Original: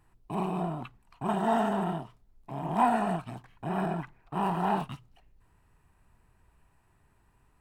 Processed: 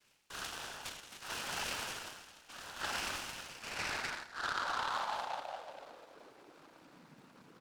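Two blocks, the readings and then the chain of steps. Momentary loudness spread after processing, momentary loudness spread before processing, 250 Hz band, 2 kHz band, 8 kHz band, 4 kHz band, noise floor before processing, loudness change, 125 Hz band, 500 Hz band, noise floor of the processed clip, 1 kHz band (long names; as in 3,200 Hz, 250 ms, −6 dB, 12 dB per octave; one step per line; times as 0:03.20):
23 LU, 16 LU, −23.0 dB, +3.0 dB, +10.5 dB, +8.5 dB, −67 dBFS, −8.5 dB, −21.5 dB, −14.5 dB, −63 dBFS, −10.0 dB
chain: on a send: multi-tap delay 194/215/266 ms −19/−18/−17 dB
on the sum: dynamic equaliser 2,900 Hz, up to −5 dB, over −49 dBFS, Q 0.76
coupled-rooms reverb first 0.96 s, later 3.2 s, from −20 dB, DRR −2 dB
cochlear-implant simulation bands 8
high-pass filter sweep 3,400 Hz → 220 Hz, 0:03.33–0:07.12
reversed playback
downward compressor 6 to 1, threshold −41 dBFS, peak gain reduction 17.5 dB
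reversed playback
short delay modulated by noise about 2,300 Hz, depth 0.053 ms
level +6 dB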